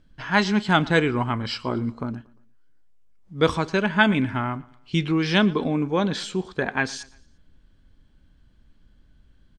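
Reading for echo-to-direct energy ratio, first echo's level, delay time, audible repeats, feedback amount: −21.5 dB, −22.5 dB, 116 ms, 2, 43%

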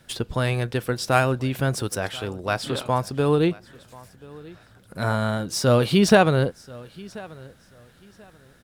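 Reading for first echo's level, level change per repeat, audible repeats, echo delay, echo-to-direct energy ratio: −22.0 dB, −12.5 dB, 2, 1,035 ms, −22.0 dB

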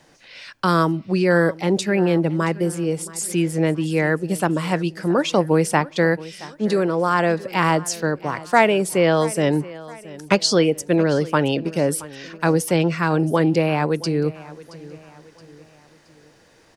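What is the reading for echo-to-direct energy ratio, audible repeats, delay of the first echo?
−18.0 dB, 3, 673 ms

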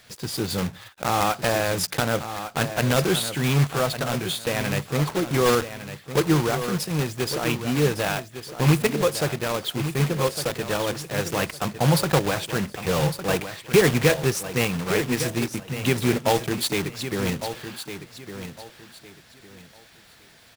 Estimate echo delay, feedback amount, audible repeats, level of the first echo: 1,157 ms, 26%, 3, −10.5 dB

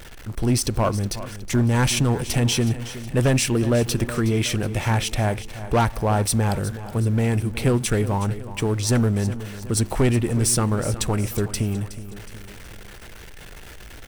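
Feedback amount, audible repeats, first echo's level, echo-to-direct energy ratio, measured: 49%, 4, −14.0 dB, −13.0 dB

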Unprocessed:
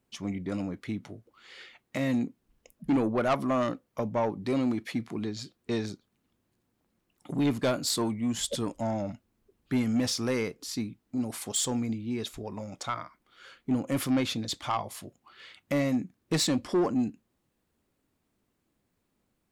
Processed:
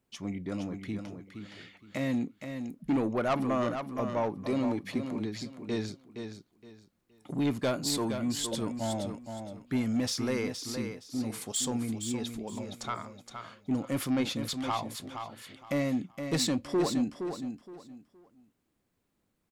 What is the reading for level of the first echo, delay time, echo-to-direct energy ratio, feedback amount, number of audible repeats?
−7.5 dB, 468 ms, −7.0 dB, 25%, 3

